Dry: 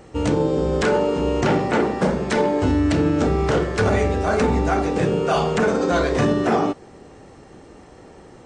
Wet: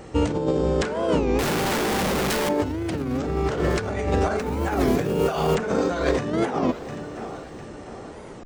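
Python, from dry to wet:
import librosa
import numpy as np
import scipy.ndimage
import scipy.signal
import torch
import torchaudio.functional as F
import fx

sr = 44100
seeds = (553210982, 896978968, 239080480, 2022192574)

p1 = fx.clip_1bit(x, sr, at=(1.39, 2.49))
p2 = fx.dmg_noise_colour(p1, sr, seeds[0], colour='white', level_db=-45.0, at=(4.38, 5.54), fade=0.02)
p3 = p2 + fx.echo_feedback(p2, sr, ms=701, feedback_pct=46, wet_db=-20, dry=0)
p4 = fx.over_compress(p3, sr, threshold_db=-22.0, ratio=-0.5)
y = fx.record_warp(p4, sr, rpm=33.33, depth_cents=250.0)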